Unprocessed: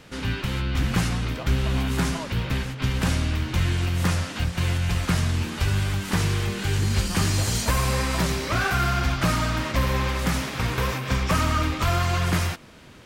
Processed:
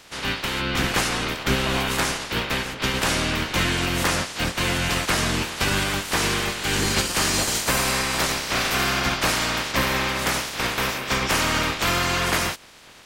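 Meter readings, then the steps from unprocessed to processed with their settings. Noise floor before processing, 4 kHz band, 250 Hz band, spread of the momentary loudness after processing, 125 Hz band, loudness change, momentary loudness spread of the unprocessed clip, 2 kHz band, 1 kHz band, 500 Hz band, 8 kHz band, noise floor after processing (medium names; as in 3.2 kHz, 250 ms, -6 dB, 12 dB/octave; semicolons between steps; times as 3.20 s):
-36 dBFS, +7.5 dB, -0.5 dB, 4 LU, -7.0 dB, +2.0 dB, 4 LU, +6.0 dB, +3.5 dB, +3.5 dB, +7.0 dB, -36 dBFS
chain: spectral peaks clipped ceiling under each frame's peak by 20 dB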